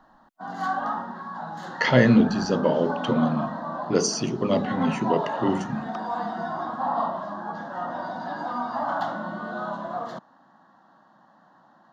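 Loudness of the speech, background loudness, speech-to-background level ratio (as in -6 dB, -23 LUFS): -23.5 LUFS, -31.0 LUFS, 7.5 dB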